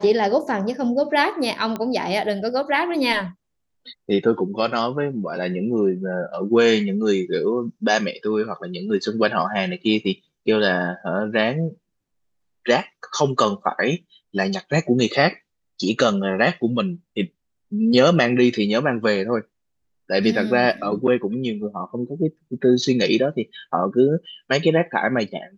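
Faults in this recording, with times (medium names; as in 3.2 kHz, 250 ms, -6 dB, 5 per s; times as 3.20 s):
1.76 s: pop -14 dBFS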